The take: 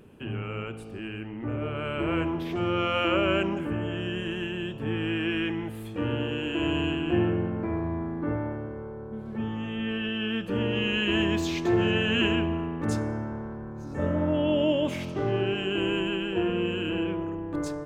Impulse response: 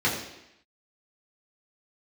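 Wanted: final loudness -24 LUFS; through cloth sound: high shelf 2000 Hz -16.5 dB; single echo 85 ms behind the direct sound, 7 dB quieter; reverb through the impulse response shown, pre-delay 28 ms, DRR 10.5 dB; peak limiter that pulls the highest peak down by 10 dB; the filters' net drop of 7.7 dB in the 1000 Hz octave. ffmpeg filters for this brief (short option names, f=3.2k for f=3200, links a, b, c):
-filter_complex "[0:a]equalizer=f=1k:t=o:g=-5.5,alimiter=limit=-23.5dB:level=0:latency=1,aecho=1:1:85:0.447,asplit=2[a][b];[1:a]atrim=start_sample=2205,adelay=28[c];[b][c]afir=irnorm=-1:irlink=0,volume=-24.5dB[d];[a][d]amix=inputs=2:normalize=0,highshelf=f=2k:g=-16.5,volume=7dB"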